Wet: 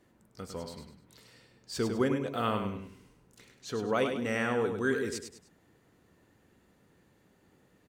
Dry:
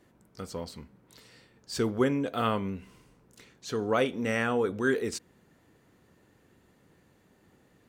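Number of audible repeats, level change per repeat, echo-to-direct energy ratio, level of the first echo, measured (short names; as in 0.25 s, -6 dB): 3, -9.0 dB, -6.5 dB, -7.0 dB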